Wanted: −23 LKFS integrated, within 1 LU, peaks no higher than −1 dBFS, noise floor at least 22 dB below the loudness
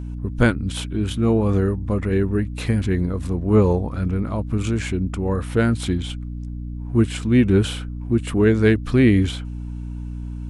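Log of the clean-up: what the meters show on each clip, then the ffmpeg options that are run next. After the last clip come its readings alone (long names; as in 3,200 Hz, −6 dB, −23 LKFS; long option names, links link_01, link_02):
mains hum 60 Hz; hum harmonics up to 300 Hz; level of the hum −28 dBFS; integrated loudness −20.5 LKFS; sample peak −4.5 dBFS; target loudness −23.0 LKFS
→ -af "bandreject=frequency=60:width_type=h:width=6,bandreject=frequency=120:width_type=h:width=6,bandreject=frequency=180:width_type=h:width=6,bandreject=frequency=240:width_type=h:width=6,bandreject=frequency=300:width_type=h:width=6"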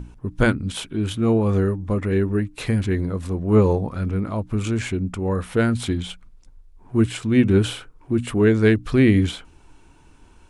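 mains hum none found; integrated loudness −21.5 LKFS; sample peak −4.0 dBFS; target loudness −23.0 LKFS
→ -af "volume=-1.5dB"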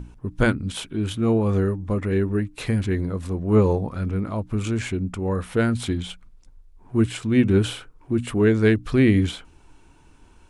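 integrated loudness −23.0 LKFS; sample peak −5.5 dBFS; background noise floor −53 dBFS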